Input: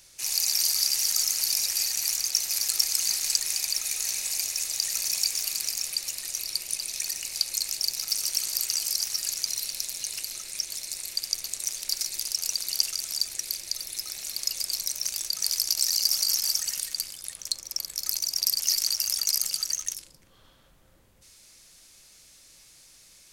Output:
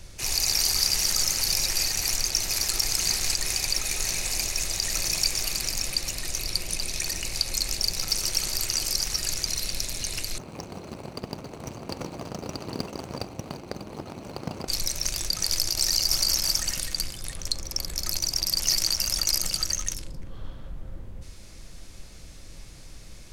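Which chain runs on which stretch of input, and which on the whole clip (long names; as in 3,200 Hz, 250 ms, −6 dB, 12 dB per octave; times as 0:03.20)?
0:10.38–0:14.68: running median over 25 samples + high-pass filter 130 Hz
whole clip: spectral tilt −3.5 dB per octave; boost into a limiter +17 dB; level −7 dB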